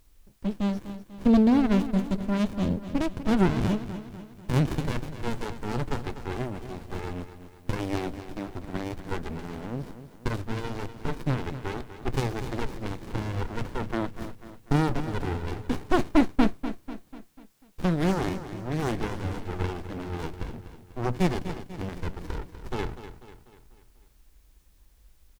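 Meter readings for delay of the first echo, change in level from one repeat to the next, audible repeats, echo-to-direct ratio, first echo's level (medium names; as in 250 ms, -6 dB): 246 ms, -6.0 dB, 4, -11.0 dB, -12.0 dB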